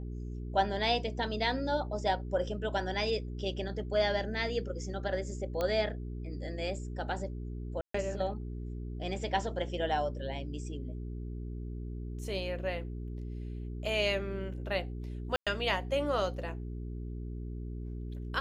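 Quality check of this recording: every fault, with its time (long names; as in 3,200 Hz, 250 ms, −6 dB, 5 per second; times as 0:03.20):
mains hum 60 Hz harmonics 7 −39 dBFS
0:05.61: click −19 dBFS
0:07.81–0:07.94: drop-out 134 ms
0:15.36–0:15.47: drop-out 106 ms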